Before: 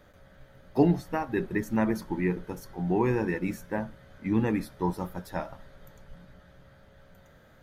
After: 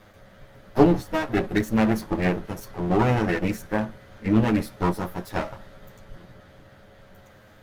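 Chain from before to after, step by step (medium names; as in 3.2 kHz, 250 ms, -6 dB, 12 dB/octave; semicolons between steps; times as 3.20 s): comb filter that takes the minimum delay 9.5 ms; trim +6.5 dB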